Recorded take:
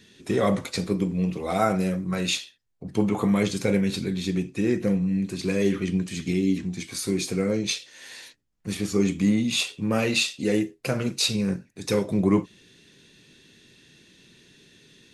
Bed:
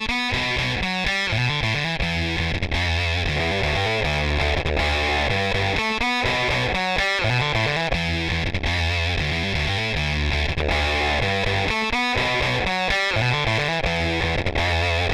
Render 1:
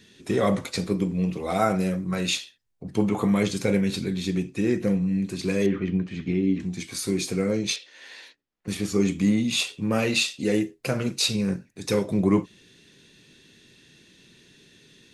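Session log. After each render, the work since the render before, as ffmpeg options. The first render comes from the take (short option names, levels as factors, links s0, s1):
-filter_complex "[0:a]asettb=1/sr,asplit=3[s0][s1][s2];[s0]atrim=end=5.664[s3];[s1]atrim=start=5.66:end=6.6,asetpts=PTS-STARTPTS,afade=t=in:d=0.004:c=qsin,afade=t=out:st=0.936:d=0.004:c=qsin,lowpass=2300[s4];[s2]atrim=start=6.596[s5];[s3][s4]acrossfade=d=0.004:c1=hsin:c2=qsin[s6];[s6][s5]acrossfade=d=0.004:c1=qsin:c2=hsin,asettb=1/sr,asplit=3[s7][s8][s9];[s7]atrim=end=7.764[s10];[s8]atrim=start=7.76:end=8.68,asetpts=PTS-STARTPTS,afade=t=in:d=0.004:c=qsin,afade=t=out:st=0.916:d=0.004:c=qsin,acrossover=split=250 4900:gain=0.178 1 0.2[s11][s12][s13];[s11][s12][s13]amix=inputs=3:normalize=0[s14];[s9]atrim=start=8.676[s15];[s10][s14]acrossfade=d=0.004:c1=hsin:c2=qsin[s16];[s16][s15]acrossfade=d=0.004:c1=qsin:c2=hsin"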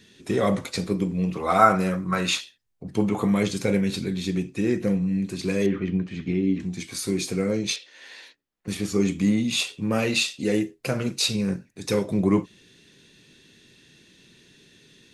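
-filter_complex "[0:a]asettb=1/sr,asplit=3[s0][s1][s2];[s0]atrim=end=1.344[s3];[s1]atrim=start=1.34:end=2.41,asetpts=PTS-STARTPTS,afade=t=in:d=0.004:c=qsin,afade=t=out:st=1.066:d=0.004:c=qsin,equalizer=f=1200:w=1.3:g=12[s4];[s2]atrim=start=2.406[s5];[s3][s4]acrossfade=d=0.004:c1=hsin:c2=qsin[s6];[s6][s5]acrossfade=d=0.004:c1=qsin:c2=hsin"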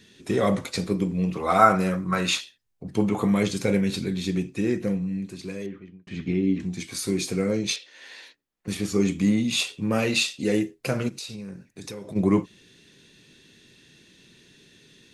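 -filter_complex "[0:a]asplit=3[s0][s1][s2];[s0]afade=t=out:st=11.08:d=0.02[s3];[s1]acompressor=threshold=0.02:ratio=6:attack=3.2:release=140:knee=1:detection=peak,afade=t=in:st=11.08:d=0.02,afade=t=out:st=12.15:d=0.02[s4];[s2]afade=t=in:st=12.15:d=0.02[s5];[s3][s4][s5]amix=inputs=3:normalize=0,asplit=2[s6][s7];[s6]atrim=end=6.07,asetpts=PTS-STARTPTS,afade=t=out:st=4.49:d=1.58[s8];[s7]atrim=start=6.07,asetpts=PTS-STARTPTS,afade=t=in:d=0.004:c=hsin[s9];[s8][s9]concat=n=2:v=0:a=1"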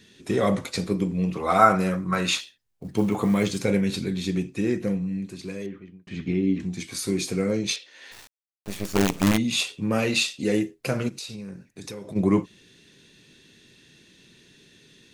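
-filter_complex "[0:a]asettb=1/sr,asplit=3[s0][s1][s2];[s0]atrim=end=2.384[s3];[s1]atrim=start=2.38:end=3.61,asetpts=PTS-STARTPTS,afade=t=in:d=0.004:c=qsin,afade=t=out:st=1.226:d=0.004:c=qsin,acrusher=bits=8:mode=log:mix=0:aa=0.000001[s4];[s2]atrim=start=3.606[s5];[s3][s4]acrossfade=d=0.004:c1=hsin:c2=qsin[s6];[s6][s5]acrossfade=d=0.004:c1=qsin:c2=hsin,asplit=3[s7][s8][s9];[s7]afade=t=out:st=8.11:d=0.02[s10];[s8]acrusher=bits=4:dc=4:mix=0:aa=0.000001,afade=t=in:st=8.11:d=0.02,afade=t=out:st=9.36:d=0.02[s11];[s9]afade=t=in:st=9.36:d=0.02[s12];[s10][s11][s12]amix=inputs=3:normalize=0"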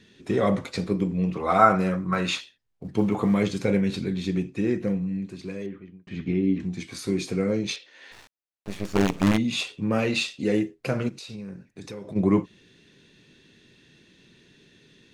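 -af "aemphasis=mode=reproduction:type=50kf"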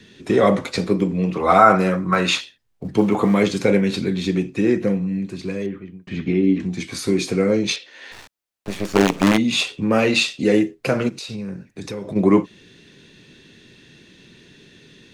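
-filter_complex "[0:a]acrossover=split=200|1200[s0][s1][s2];[s0]acompressor=threshold=0.0141:ratio=6[s3];[s3][s1][s2]amix=inputs=3:normalize=0,alimiter=level_in=2.51:limit=0.891:release=50:level=0:latency=1"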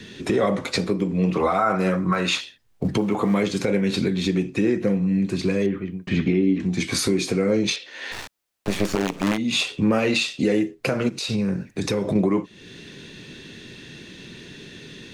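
-filter_complex "[0:a]asplit=2[s0][s1];[s1]acompressor=threshold=0.0501:ratio=6,volume=1.26[s2];[s0][s2]amix=inputs=2:normalize=0,alimiter=limit=0.282:level=0:latency=1:release=445"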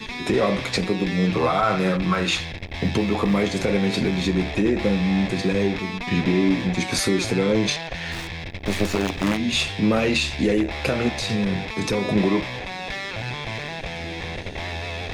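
-filter_complex "[1:a]volume=0.335[s0];[0:a][s0]amix=inputs=2:normalize=0"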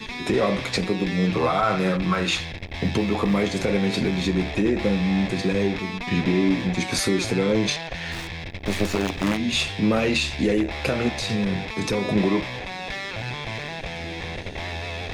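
-af "volume=0.891"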